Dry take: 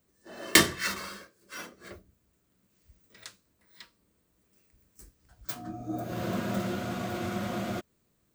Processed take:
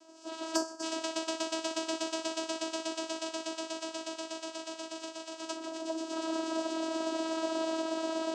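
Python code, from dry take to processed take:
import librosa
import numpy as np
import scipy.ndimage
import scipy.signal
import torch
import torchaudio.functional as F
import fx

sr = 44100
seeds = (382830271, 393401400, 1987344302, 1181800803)

p1 = x + fx.echo_swell(x, sr, ms=121, loudest=8, wet_db=-10.0, dry=0)
p2 = fx.spec_gate(p1, sr, threshold_db=-10, keep='weak')
p3 = fx.low_shelf(p2, sr, hz=160.0, db=9.5)
p4 = fx.fixed_phaser(p3, sr, hz=710.0, stages=4)
p5 = p4 + 0.65 * np.pad(p4, (int(6.9 * sr / 1000.0), 0))[:len(p4)]
p6 = fx.vocoder(p5, sr, bands=8, carrier='saw', carrier_hz=323.0)
p7 = 10.0 ** (-21.0 / 20.0) * np.tanh(p6 / 10.0 ** (-21.0 / 20.0))
p8 = p6 + (p7 * librosa.db_to_amplitude(-5.0))
p9 = fx.spec_box(p8, sr, start_s=0.55, length_s=0.28, low_hz=1900.0, high_hz=4500.0, gain_db=-17)
p10 = fx.band_squash(p9, sr, depth_pct=70)
y = p10 * librosa.db_to_amplitude(-1.5)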